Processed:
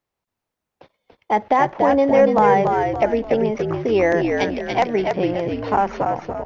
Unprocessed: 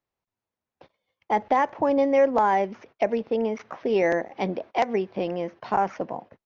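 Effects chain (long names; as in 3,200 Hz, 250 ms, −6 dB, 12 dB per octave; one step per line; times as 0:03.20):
0:04.28–0:04.68: spectral tilt +3.5 dB per octave
echo with shifted repeats 286 ms, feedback 42%, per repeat −66 Hz, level −4 dB
level +4.5 dB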